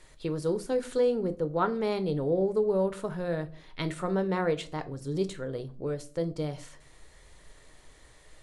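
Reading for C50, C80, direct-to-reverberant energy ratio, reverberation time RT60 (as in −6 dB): 18.5 dB, 23.5 dB, 9.5 dB, 0.45 s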